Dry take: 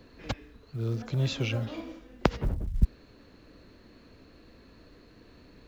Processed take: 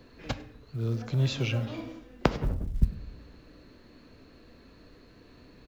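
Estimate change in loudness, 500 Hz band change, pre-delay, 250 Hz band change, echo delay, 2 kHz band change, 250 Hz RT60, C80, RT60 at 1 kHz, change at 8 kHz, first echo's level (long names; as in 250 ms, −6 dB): +0.5 dB, 0.0 dB, 7 ms, +0.5 dB, 101 ms, +0.5 dB, 0.95 s, 18.5 dB, 0.55 s, can't be measured, −23.0 dB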